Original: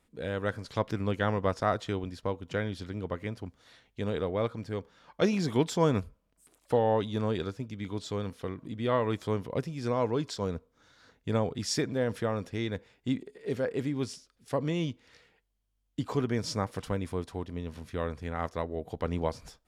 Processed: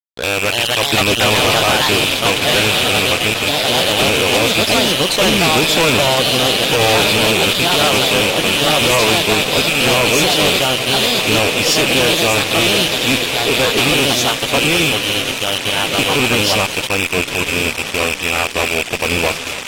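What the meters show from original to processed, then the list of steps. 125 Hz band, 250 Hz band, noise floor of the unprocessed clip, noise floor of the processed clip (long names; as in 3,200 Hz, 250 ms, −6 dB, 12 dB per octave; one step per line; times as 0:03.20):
+10.5 dB, +12.5 dB, −74 dBFS, −24 dBFS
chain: loose part that buzzes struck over −37 dBFS, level −17 dBFS
high-pass filter 310 Hz 6 dB per octave
parametric band 3,400 Hz +10 dB 0.52 octaves
feedback delay with all-pass diffusion 1,278 ms, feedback 64%, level −13 dB
delay with pitch and tempo change per echo 327 ms, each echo +3 semitones, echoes 2
fuzz pedal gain 35 dB, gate −40 dBFS
level +1 dB
AAC 48 kbit/s 44,100 Hz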